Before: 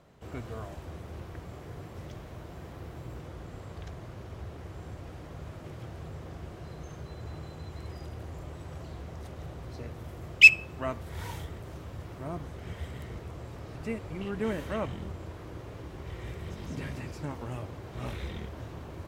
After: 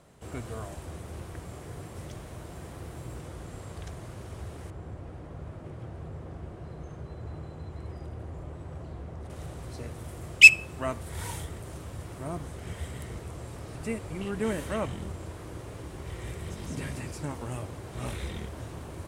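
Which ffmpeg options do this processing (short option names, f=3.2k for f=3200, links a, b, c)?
-filter_complex "[0:a]asettb=1/sr,asplit=3[a][b][c];[a]atrim=end=4.704[d];[b]atrim=start=4.7:end=9.3,asetpts=PTS-STARTPTS,afade=t=in:d=0.004:c=qsin,afade=t=out:st=4.596:d=0.004:c=qsin,lowpass=f=1.2k:p=1[e];[c]atrim=start=9.296[f];[d][e]acrossfade=d=0.004:c1=hsin:c2=qsin[g];[g][f]acrossfade=d=0.004:c1=qsin:c2=hsin,equalizer=f=9.2k:w=1.4:g=13.5,volume=1.5dB"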